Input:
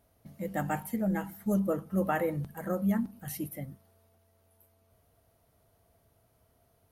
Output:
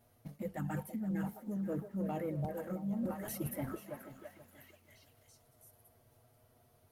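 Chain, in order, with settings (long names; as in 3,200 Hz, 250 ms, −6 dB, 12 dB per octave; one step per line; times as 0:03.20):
flanger swept by the level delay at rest 8.5 ms, full sweep at −24.5 dBFS
leveller curve on the samples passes 1
on a send: echo through a band-pass that steps 333 ms, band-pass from 510 Hz, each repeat 0.7 octaves, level −7 dB
on the sum: dynamic equaliser 210 Hz, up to +7 dB, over −40 dBFS, Q 0.74
reversed playback
downward compressor 10 to 1, threshold −41 dBFS, peak gain reduction 24.5 dB
reversed playback
feedback echo at a low word length 481 ms, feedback 35%, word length 11 bits, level −14 dB
level +5.5 dB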